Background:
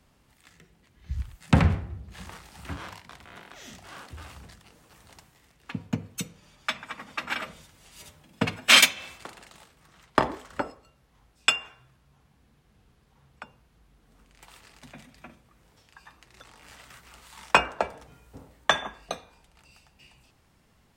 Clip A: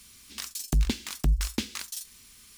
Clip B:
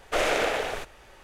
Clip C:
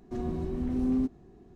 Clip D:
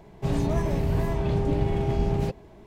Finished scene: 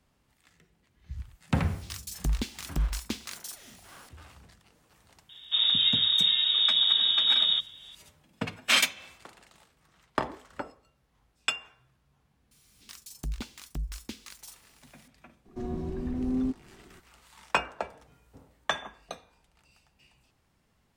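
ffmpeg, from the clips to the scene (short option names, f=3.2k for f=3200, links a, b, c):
-filter_complex "[1:a]asplit=2[a][b];[0:a]volume=-7dB[c];[4:a]lowpass=f=3.2k:t=q:w=0.5098,lowpass=f=3.2k:t=q:w=0.6013,lowpass=f=3.2k:t=q:w=0.9,lowpass=f=3.2k:t=q:w=2.563,afreqshift=-3800[d];[a]atrim=end=2.57,asetpts=PTS-STARTPTS,volume=-4dB,afade=t=in:d=0.004:c=hsin,afade=t=out:st=2.566:d=0.004:c=hsin,adelay=1520[e];[d]atrim=end=2.66,asetpts=PTS-STARTPTS,afade=t=in:d=0.004:c=hsin,afade=t=out:st=2.656:d=0.004:c=hsin,adelay=233289S[f];[b]atrim=end=2.57,asetpts=PTS-STARTPTS,volume=-10.5dB,afade=t=in:d=0.004:c=hsin,afade=t=out:st=2.566:d=0.004:c=hsin,adelay=12510[g];[3:a]atrim=end=1.55,asetpts=PTS-STARTPTS,volume=-1.5dB,afade=t=in:d=0.004:c=hsin,afade=t=out:st=1.546:d=0.004:c=hsin,adelay=15450[h];[c][e][f][g][h]amix=inputs=5:normalize=0"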